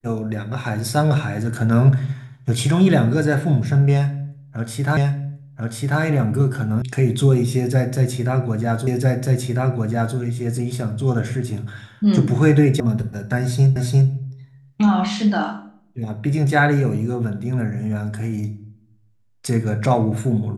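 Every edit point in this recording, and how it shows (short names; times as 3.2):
4.97 repeat of the last 1.04 s
6.82 sound cut off
8.87 repeat of the last 1.3 s
12.8 sound cut off
13.76 repeat of the last 0.35 s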